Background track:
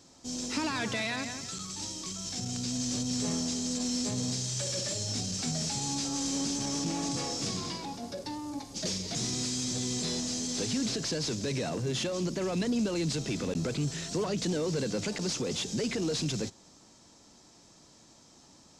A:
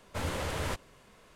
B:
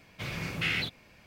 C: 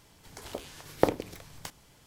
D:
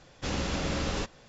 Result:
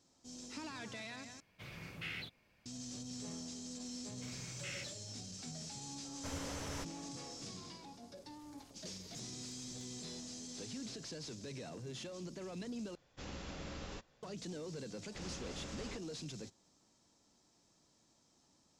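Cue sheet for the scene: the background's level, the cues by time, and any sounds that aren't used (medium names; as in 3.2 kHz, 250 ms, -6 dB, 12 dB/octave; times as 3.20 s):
background track -14.5 dB
1.40 s: replace with B -14 dB
4.02 s: add B -17 dB
6.09 s: add A -11 dB
8.16 s: add C -15 dB + compression, threshold -46 dBFS
12.95 s: replace with D -15.5 dB
14.92 s: add D -16.5 dB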